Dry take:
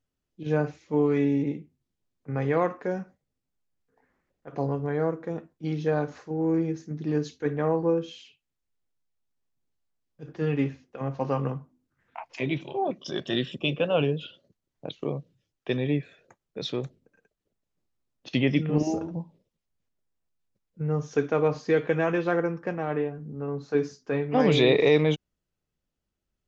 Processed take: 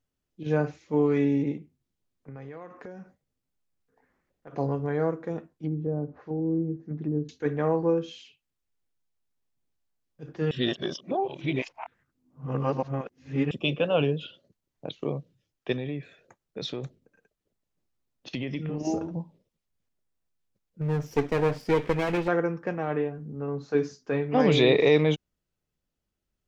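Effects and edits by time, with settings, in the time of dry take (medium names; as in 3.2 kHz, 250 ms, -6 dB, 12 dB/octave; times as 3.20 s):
1.57–4.54 s: compression, threshold -39 dBFS
5.51–7.29 s: low-pass that closes with the level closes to 360 Hz, closed at -25.5 dBFS
10.51–13.51 s: reverse
15.72–18.85 s: compression, threshold -28 dBFS
20.81–22.28 s: comb filter that takes the minimum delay 0.38 ms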